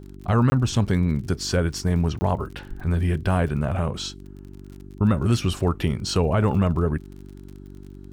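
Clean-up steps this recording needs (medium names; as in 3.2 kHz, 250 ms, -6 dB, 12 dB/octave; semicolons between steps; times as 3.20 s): de-click; de-hum 48.3 Hz, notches 8; interpolate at 0.50/2.19 s, 20 ms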